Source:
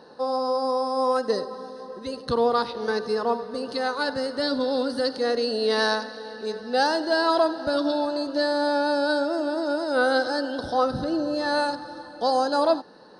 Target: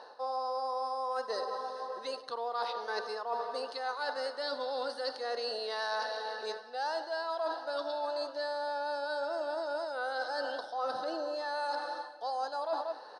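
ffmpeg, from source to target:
-filter_complex "[0:a]highpass=f=720:t=q:w=1.6,asplit=2[a][b];[b]adelay=186.6,volume=-17dB,highshelf=f=4k:g=-4.2[c];[a][c]amix=inputs=2:normalize=0,areverse,acompressor=threshold=-32dB:ratio=10,areverse,lowpass=8.9k"

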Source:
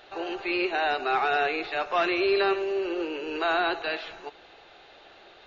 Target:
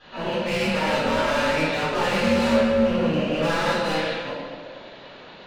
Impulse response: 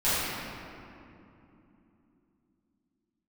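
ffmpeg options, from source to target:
-filter_complex "[0:a]aeval=exprs='val(0)*sin(2*PI*160*n/s)':c=same,asoftclip=type=hard:threshold=-31dB[a];[1:a]atrim=start_sample=2205,asetrate=83790,aresample=44100[b];[a][b]afir=irnorm=-1:irlink=0,volume=1.5dB"

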